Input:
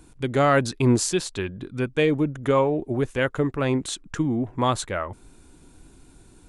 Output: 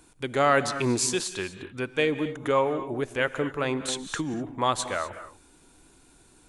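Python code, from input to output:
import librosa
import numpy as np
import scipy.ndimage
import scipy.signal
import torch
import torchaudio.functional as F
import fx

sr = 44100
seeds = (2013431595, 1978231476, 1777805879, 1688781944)

y = fx.low_shelf(x, sr, hz=320.0, db=-11.5)
y = fx.rev_gated(y, sr, seeds[0], gate_ms=270, shape='rising', drr_db=11.5)
y = fx.band_squash(y, sr, depth_pct=70, at=(3.88, 4.34))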